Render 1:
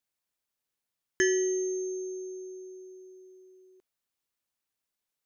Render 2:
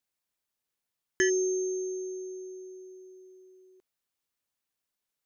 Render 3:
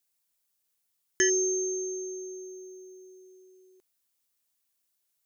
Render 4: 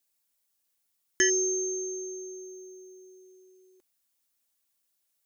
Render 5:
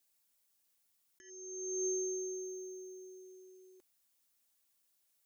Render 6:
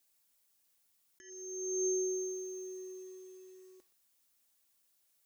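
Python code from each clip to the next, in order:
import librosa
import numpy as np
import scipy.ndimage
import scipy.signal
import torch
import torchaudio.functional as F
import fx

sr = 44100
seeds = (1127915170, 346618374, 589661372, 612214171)

y1 = fx.spec_erase(x, sr, start_s=1.3, length_s=1.01, low_hz=390.0, high_hz=3300.0)
y2 = fx.high_shelf(y1, sr, hz=4600.0, db=12.0)
y2 = F.gain(torch.from_numpy(y2), -1.0).numpy()
y3 = y2 + 0.43 * np.pad(y2, (int(3.6 * sr / 1000.0), 0))[:len(y2)]
y4 = fx.over_compress(y3, sr, threshold_db=-34.0, ratio=-0.5)
y4 = F.gain(torch.from_numpy(y4), -4.5).numpy()
y5 = fx.echo_crushed(y4, sr, ms=121, feedback_pct=80, bits=10, wet_db=-13)
y5 = F.gain(torch.from_numpy(y5), 2.5).numpy()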